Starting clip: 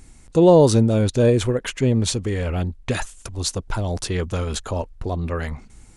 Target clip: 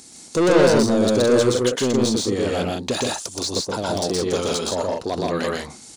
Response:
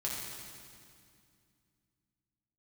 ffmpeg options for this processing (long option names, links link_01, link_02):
-filter_complex "[0:a]highpass=250,highshelf=frequency=3200:width_type=q:width=1.5:gain=13,acrossover=split=1100[link_01][link_02];[link_02]acompressor=threshold=-27dB:ratio=8[link_03];[link_01][link_03]amix=inputs=2:normalize=0,asoftclip=type=tanh:threshold=-19.5dB,asplit=2[link_04][link_05];[link_05]adynamicsmooth=sensitivity=3:basefreq=4900,volume=2.5dB[link_06];[link_04][link_06]amix=inputs=2:normalize=0,aecho=1:1:122.4|163.3:0.891|0.631,volume=-2.5dB"